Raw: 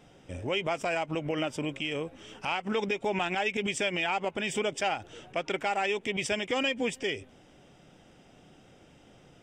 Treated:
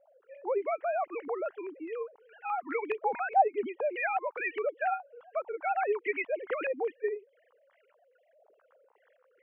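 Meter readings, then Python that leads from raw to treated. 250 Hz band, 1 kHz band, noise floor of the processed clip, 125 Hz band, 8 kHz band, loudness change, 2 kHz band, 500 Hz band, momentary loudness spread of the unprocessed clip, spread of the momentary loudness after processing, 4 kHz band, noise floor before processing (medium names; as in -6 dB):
-9.5 dB, +3.0 dB, -69 dBFS, under -30 dB, under -40 dB, -2.0 dB, -4.5 dB, 0.0 dB, 8 LU, 10 LU, under -25 dB, -58 dBFS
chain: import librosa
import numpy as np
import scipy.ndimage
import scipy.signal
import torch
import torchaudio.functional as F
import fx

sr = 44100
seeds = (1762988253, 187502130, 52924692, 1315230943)

y = fx.sine_speech(x, sr)
y = fx.wow_flutter(y, sr, seeds[0], rate_hz=2.1, depth_cents=24.0)
y = fx.filter_held_lowpass(y, sr, hz=4.8, low_hz=790.0, high_hz=2000.0)
y = y * librosa.db_to_amplitude(-4.0)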